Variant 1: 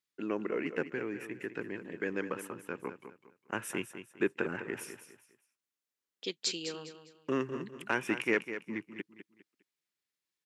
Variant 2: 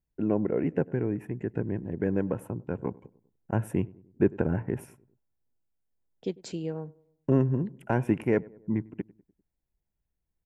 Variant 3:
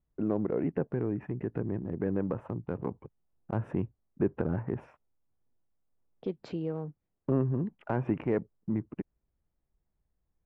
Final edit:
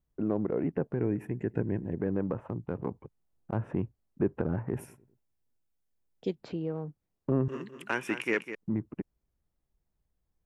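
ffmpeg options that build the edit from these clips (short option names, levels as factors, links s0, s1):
-filter_complex "[1:a]asplit=2[s0][s1];[2:a]asplit=4[s2][s3][s4][s5];[s2]atrim=end=1.012[s6];[s0]atrim=start=1.008:end=2.002[s7];[s3]atrim=start=1.998:end=4.742[s8];[s1]atrim=start=4.738:end=6.352[s9];[s4]atrim=start=6.348:end=7.482[s10];[0:a]atrim=start=7.478:end=8.552[s11];[s5]atrim=start=8.548[s12];[s6][s7]acrossfade=d=0.004:c1=hsin:c2=hsin[s13];[s13][s8]acrossfade=d=0.004:c1=hsin:c2=hsin[s14];[s14][s9]acrossfade=d=0.004:c1=hsin:c2=hsin[s15];[s15][s10]acrossfade=d=0.004:c1=hsin:c2=hsin[s16];[s16][s11]acrossfade=d=0.004:c1=hsin:c2=hsin[s17];[s17][s12]acrossfade=d=0.004:c1=hsin:c2=hsin"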